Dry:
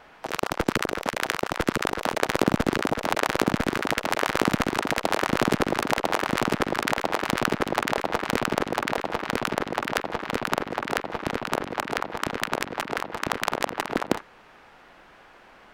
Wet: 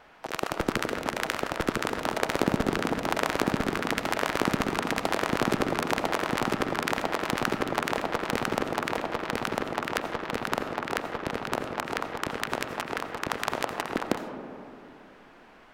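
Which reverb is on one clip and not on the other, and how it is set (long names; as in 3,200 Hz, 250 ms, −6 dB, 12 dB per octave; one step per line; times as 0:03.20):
comb and all-pass reverb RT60 2.9 s, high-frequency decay 0.25×, pre-delay 45 ms, DRR 8 dB
level −3.5 dB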